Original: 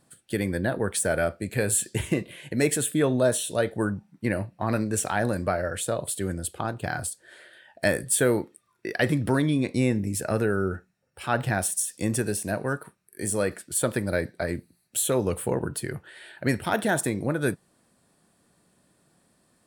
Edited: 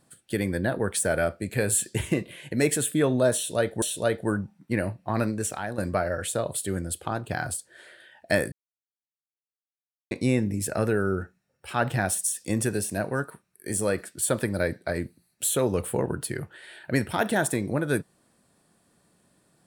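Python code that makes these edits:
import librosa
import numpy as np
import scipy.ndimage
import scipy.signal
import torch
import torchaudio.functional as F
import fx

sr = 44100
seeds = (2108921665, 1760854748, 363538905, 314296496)

y = fx.edit(x, sr, fx.repeat(start_s=3.35, length_s=0.47, count=2),
    fx.fade_out_to(start_s=4.75, length_s=0.56, floor_db=-11.0),
    fx.silence(start_s=8.05, length_s=1.59), tone=tone)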